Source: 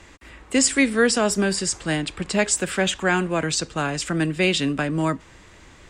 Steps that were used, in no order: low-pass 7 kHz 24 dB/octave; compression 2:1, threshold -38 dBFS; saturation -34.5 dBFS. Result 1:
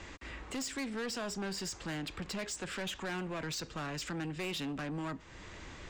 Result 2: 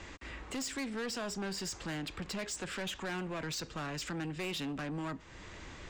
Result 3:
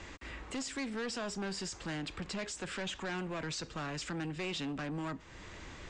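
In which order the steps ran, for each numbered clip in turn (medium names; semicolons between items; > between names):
compression > low-pass > saturation; low-pass > compression > saturation; compression > saturation > low-pass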